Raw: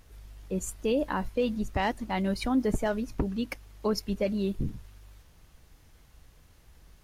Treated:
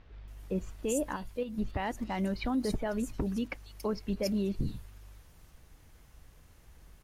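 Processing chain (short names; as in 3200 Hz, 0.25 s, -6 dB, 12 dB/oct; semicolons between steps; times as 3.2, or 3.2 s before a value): limiter -23.5 dBFS, peak gain reduction 7 dB; 1.16–1.58 level quantiser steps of 10 dB; bands offset in time lows, highs 0.28 s, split 4100 Hz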